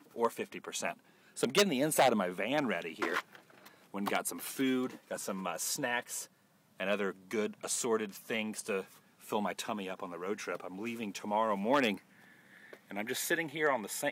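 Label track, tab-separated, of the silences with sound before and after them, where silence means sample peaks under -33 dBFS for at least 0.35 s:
0.910000	1.390000	silence
3.200000	3.950000	silence
6.210000	6.800000	silence
8.800000	9.320000	silence
11.940000	12.910000	silence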